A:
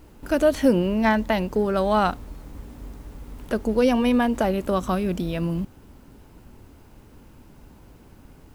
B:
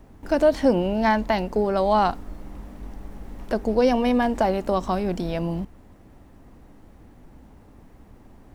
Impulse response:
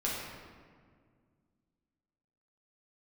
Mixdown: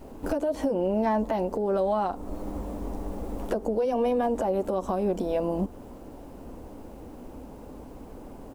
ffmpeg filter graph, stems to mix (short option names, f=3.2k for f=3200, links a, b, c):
-filter_complex "[0:a]acompressor=threshold=-30dB:ratio=4,volume=-1.5dB[a];[1:a]equalizer=f=125:t=o:w=1:g=-9,equalizer=f=250:t=o:w=1:g=6,equalizer=f=500:t=o:w=1:g=10,equalizer=f=1k:t=o:w=1:g=6,equalizer=f=2k:t=o:w=1:g=-11,equalizer=f=4k:t=o:w=1:g=-10,equalizer=f=8k:t=o:w=1:g=5,alimiter=limit=-9dB:level=0:latency=1:release=103,acompressor=threshold=-23dB:ratio=3,adelay=11,volume=1.5dB[b];[a][b]amix=inputs=2:normalize=0,alimiter=limit=-17dB:level=0:latency=1:release=407"